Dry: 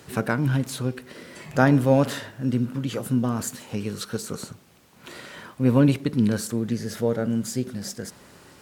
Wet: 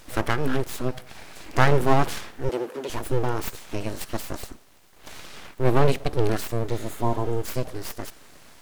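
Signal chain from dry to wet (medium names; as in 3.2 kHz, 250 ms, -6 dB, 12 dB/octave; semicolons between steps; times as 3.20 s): full-wave rectifier; 2.49–2.90 s: high-pass 230 Hz 24 dB/octave; 6.74–7.37 s: spectral replace 1.1–6.4 kHz both; trim +2 dB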